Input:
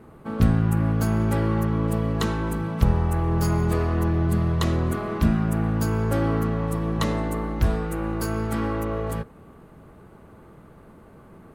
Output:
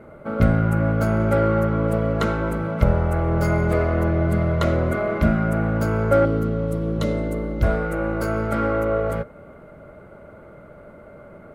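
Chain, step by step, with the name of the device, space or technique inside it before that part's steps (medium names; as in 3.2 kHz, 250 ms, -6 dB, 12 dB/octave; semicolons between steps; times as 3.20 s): 6.25–7.63 s: high-order bell 1.2 kHz -10.5 dB 2.3 oct; inside a helmet (treble shelf 3.4 kHz -8 dB; small resonant body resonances 590/1400/2100 Hz, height 17 dB, ringing for 45 ms); trim +1 dB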